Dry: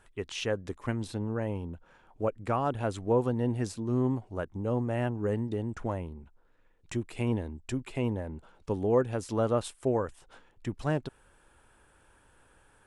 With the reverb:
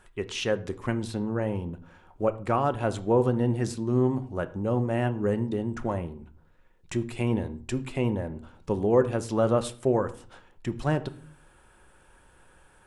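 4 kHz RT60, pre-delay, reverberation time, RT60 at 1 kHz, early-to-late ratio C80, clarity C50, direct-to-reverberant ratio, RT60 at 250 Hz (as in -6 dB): 0.30 s, 5 ms, 0.45 s, 0.45 s, 20.0 dB, 17.0 dB, 9.5 dB, 0.70 s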